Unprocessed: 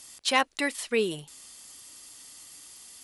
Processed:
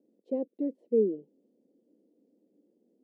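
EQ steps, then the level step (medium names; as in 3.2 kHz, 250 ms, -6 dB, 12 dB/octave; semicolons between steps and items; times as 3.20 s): elliptic band-pass 200–510 Hz, stop band 50 dB; +2.5 dB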